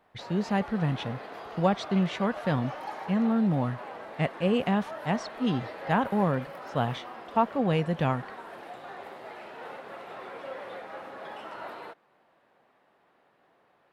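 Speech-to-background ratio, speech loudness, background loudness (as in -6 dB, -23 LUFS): 12.5 dB, -28.5 LUFS, -41.0 LUFS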